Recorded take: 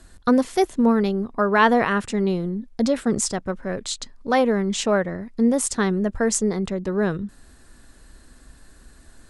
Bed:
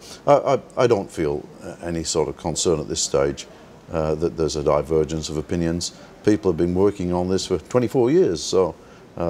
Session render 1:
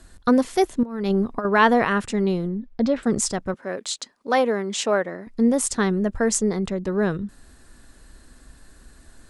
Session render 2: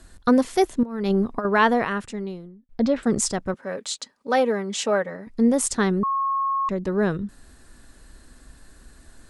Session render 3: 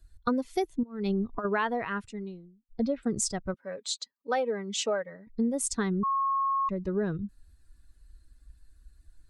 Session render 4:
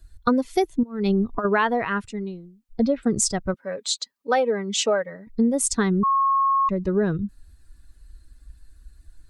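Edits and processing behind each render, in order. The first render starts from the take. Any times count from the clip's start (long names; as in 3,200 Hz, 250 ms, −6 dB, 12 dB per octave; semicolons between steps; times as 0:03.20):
0:00.83–0:01.45: compressor whose output falls as the input rises −23 dBFS, ratio −0.5; 0:02.47–0:03.03: high-frequency loss of the air 180 metres; 0:03.54–0:05.27: high-pass filter 290 Hz
0:01.39–0:02.69: fade out; 0:03.61–0:05.30: notch comb filter 350 Hz; 0:06.03–0:06.69: beep over 1,090 Hz −20.5 dBFS
spectral dynamics exaggerated over time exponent 1.5; downward compressor 6 to 1, threshold −25 dBFS, peak gain reduction 10.5 dB
level +7.5 dB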